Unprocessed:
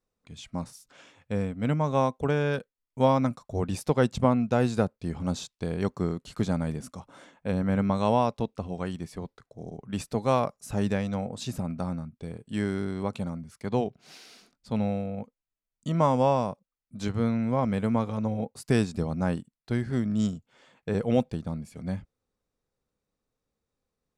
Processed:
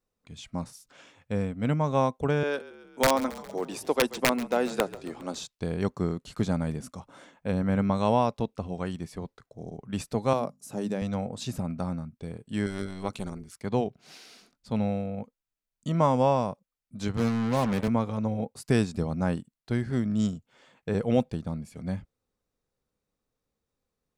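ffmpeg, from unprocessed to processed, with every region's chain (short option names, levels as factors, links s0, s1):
-filter_complex "[0:a]asettb=1/sr,asplit=3[s0][s1][s2];[s0]atrim=end=2.434[s3];[s1]atrim=start=2.43:end=5.39,asetpts=PTS-STARTPTS,afade=t=in:d=0.004:c=qsin,afade=t=out:st=2.956:d=0.004:c=qsin,highpass=f=270:w=0.5412,highpass=f=270:w=1.3066,aeval=exprs='(mod(4.22*val(0)+1,2)-1)/4.22':c=same,asplit=7[s4][s5][s6][s7][s8][s9][s10];[s5]adelay=136,afreqshift=-34,volume=0.141[s11];[s6]adelay=272,afreqshift=-68,volume=0.0861[s12];[s7]adelay=408,afreqshift=-102,volume=0.0525[s13];[s8]adelay=544,afreqshift=-136,volume=0.032[s14];[s9]adelay=680,afreqshift=-170,volume=0.0195[s15];[s10]adelay=816,afreqshift=-204,volume=0.0119[s16];[s4][s11][s12][s13][s14][s15][s16]amix=inputs=7:normalize=0,atrim=end_sample=130536[s17];[s2]atrim=start=5.386[s18];[s3][s17]acrossfade=d=0.004:c1=hsin:c2=qsin[s19];[s19][s18]acrossfade=d=0.004:c1=qsin:c2=hsin,asettb=1/sr,asplit=3[s20][s21][s22];[s20]atrim=end=10.334[s23];[s21]atrim=start=10.33:end=11.02,asetpts=PTS-STARTPTS,afade=t=in:d=0.004:c=qsin,afade=t=out:st=0.686:d=0.004:c=qsin,highpass=f=150:w=0.5412,highpass=f=150:w=1.3066,equalizer=f=1900:t=o:w=2.5:g=-8.5,bandreject=f=50:t=h:w=6,bandreject=f=100:t=h:w=6,bandreject=f=150:t=h:w=6,bandreject=f=200:t=h:w=6,bandreject=f=250:t=h:w=6[s24];[s22]atrim=start=11.016[s25];[s23][s24]acrossfade=d=0.004:c1=hsin:c2=qsin[s26];[s26][s25]acrossfade=d=0.004:c1=qsin:c2=hsin,asettb=1/sr,asplit=3[s27][s28][s29];[s27]atrim=end=12.664[s30];[s28]atrim=start=12.66:end=13.57,asetpts=PTS-STARTPTS,afade=t=in:d=0.004:c=qsin,afade=t=out:st=0.906:d=0.004:c=qsin,highshelf=f=2300:g=10.5,tremolo=f=190:d=0.75[s31];[s29]atrim=start=13.566[s32];[s30][s31]acrossfade=d=0.004:c1=hsin:c2=qsin[s33];[s33][s32]acrossfade=d=0.004:c1=qsin:c2=hsin,asettb=1/sr,asplit=3[s34][s35][s36];[s34]atrim=end=17.174[s37];[s35]atrim=start=17.17:end=17.88,asetpts=PTS-STARTPTS,afade=t=in:d=0.004:c=qsin,afade=t=out:st=0.706:d=0.004:c=qsin,highpass=f=100:w=0.5412,highpass=f=100:w=1.3066,acrusher=bits=4:mix=0:aa=0.5[s38];[s36]atrim=start=17.876[s39];[s37][s38]acrossfade=d=0.004:c1=hsin:c2=qsin[s40];[s40][s39]acrossfade=d=0.004:c1=qsin:c2=hsin"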